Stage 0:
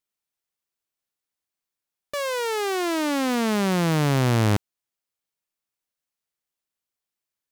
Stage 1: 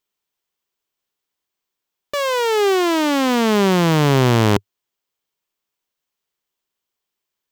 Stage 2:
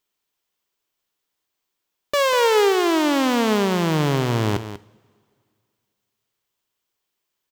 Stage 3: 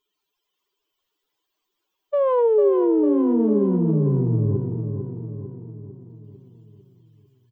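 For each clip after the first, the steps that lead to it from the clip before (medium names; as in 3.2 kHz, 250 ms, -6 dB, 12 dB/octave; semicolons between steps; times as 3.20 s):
graphic EQ with 31 bands 100 Hz -4 dB, 400 Hz +6 dB, 1 kHz +4 dB, 3.15 kHz +4 dB, 10 kHz -7 dB; trim +5.5 dB
peak limiter -14.5 dBFS, peak gain reduction 9 dB; delay 192 ms -11.5 dB; two-slope reverb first 0.56 s, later 2.3 s, from -18 dB, DRR 15 dB; trim +2 dB
spectral contrast enhancement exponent 3.1; on a send: feedback delay 449 ms, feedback 54%, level -7 dB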